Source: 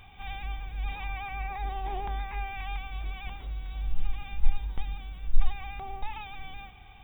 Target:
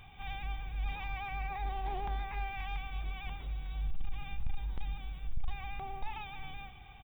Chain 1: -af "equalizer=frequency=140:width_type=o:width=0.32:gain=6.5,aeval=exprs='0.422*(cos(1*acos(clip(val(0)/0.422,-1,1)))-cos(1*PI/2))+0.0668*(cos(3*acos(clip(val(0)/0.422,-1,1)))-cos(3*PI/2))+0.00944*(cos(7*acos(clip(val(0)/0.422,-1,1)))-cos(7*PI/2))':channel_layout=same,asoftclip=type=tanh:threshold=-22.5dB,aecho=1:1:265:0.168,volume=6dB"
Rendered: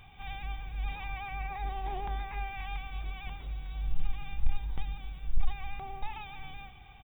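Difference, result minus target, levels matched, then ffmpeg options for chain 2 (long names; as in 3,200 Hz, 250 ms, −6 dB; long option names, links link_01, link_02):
soft clipping: distortion −6 dB
-af "equalizer=frequency=140:width_type=o:width=0.32:gain=6.5,aeval=exprs='0.422*(cos(1*acos(clip(val(0)/0.422,-1,1)))-cos(1*PI/2))+0.0668*(cos(3*acos(clip(val(0)/0.422,-1,1)))-cos(3*PI/2))+0.00944*(cos(7*acos(clip(val(0)/0.422,-1,1)))-cos(7*PI/2))':channel_layout=same,asoftclip=type=tanh:threshold=-32.5dB,aecho=1:1:265:0.168,volume=6dB"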